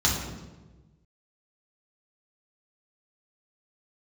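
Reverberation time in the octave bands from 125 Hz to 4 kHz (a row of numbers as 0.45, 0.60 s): 1.8, 1.4, 1.4, 1.0, 0.90, 0.85 s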